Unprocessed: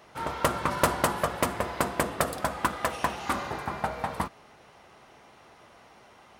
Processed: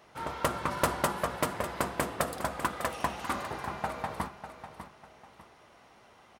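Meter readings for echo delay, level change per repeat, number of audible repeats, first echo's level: 598 ms, −10.0 dB, 2, −11.0 dB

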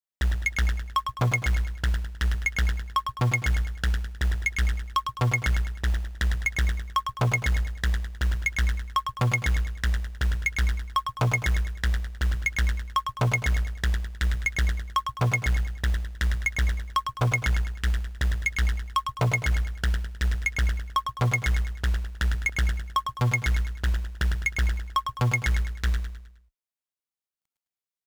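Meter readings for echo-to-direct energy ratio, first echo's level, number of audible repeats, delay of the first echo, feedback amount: −6.0 dB, −7.0 dB, 4, 104 ms, 41%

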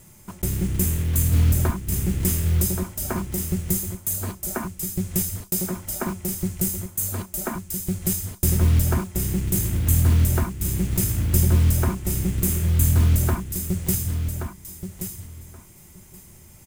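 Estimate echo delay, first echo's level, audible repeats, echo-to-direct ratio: 1,127 ms, −8.0 dB, 2, −8.0 dB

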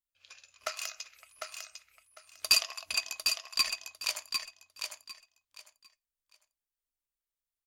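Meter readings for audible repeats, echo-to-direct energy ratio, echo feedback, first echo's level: 3, −5.5 dB, 21%, −5.5 dB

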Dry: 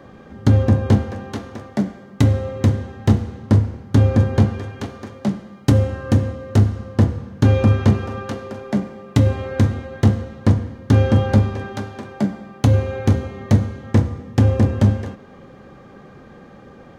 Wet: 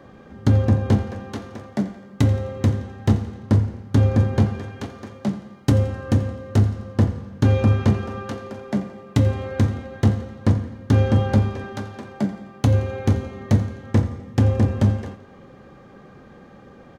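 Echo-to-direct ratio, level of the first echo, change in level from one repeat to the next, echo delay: −17.0 dB, −18.0 dB, −6.0 dB, 86 ms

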